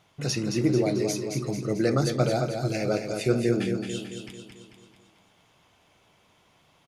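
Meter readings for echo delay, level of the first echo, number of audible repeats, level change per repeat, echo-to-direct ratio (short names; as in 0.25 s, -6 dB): 0.221 s, -6.0 dB, 6, -5.5 dB, -4.5 dB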